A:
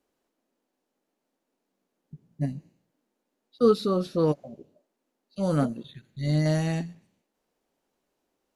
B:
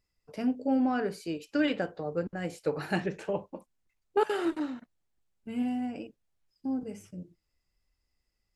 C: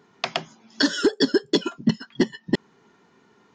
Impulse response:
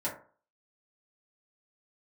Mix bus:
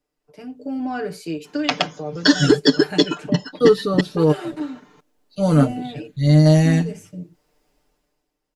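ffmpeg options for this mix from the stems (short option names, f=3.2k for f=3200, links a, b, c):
-filter_complex "[0:a]volume=-5.5dB[a];[1:a]acrossover=split=180|3000[b][c][d];[c]acompressor=threshold=-31dB:ratio=6[e];[b][e][d]amix=inputs=3:normalize=0,volume=-7.5dB[f];[2:a]adelay=1450,volume=-7dB[g];[a][f][g]amix=inputs=3:normalize=0,aecho=1:1:6.7:0.73,dynaudnorm=f=110:g=13:m=15dB"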